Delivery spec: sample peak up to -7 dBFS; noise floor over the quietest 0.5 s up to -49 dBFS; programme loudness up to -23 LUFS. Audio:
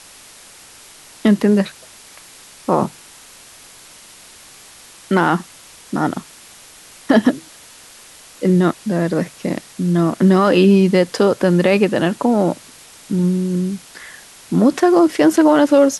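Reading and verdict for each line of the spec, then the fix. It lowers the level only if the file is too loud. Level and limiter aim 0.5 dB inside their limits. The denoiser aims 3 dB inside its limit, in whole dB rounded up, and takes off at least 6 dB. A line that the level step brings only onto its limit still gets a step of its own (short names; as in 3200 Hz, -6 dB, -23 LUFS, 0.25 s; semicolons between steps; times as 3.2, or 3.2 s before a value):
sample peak -2.5 dBFS: fail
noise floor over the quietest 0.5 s -43 dBFS: fail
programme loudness -16.0 LUFS: fail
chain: gain -7.5 dB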